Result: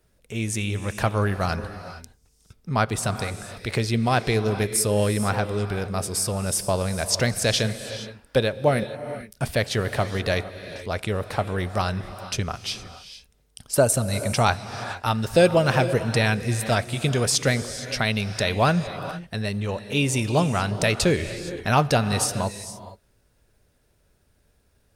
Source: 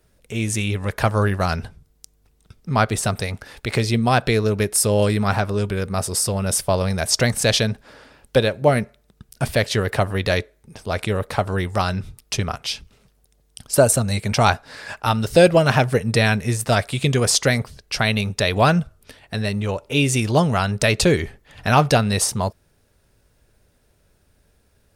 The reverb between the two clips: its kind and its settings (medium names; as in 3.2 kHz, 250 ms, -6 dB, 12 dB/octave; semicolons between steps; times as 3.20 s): gated-style reverb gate 490 ms rising, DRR 11 dB; trim -4 dB